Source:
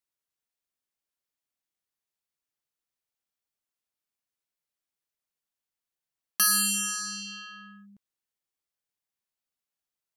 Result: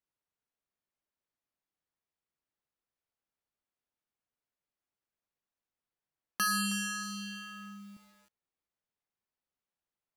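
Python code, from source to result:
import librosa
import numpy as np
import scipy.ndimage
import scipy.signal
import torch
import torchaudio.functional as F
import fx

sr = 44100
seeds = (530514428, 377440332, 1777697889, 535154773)

y = fx.lowpass(x, sr, hz=1400.0, slope=6)
y = fx.echo_crushed(y, sr, ms=317, feedback_pct=35, bits=9, wet_db=-12.5)
y = y * librosa.db_to_amplitude(2.5)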